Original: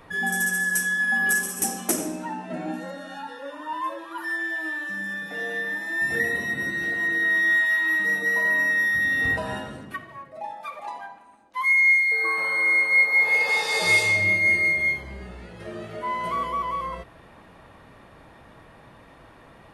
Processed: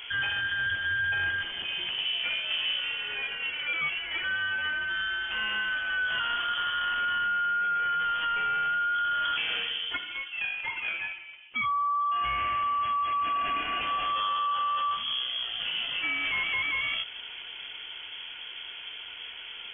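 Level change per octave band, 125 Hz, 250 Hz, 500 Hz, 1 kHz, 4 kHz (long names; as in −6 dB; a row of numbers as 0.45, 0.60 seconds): −10.5, −16.5, −14.5, +3.5, +8.0 decibels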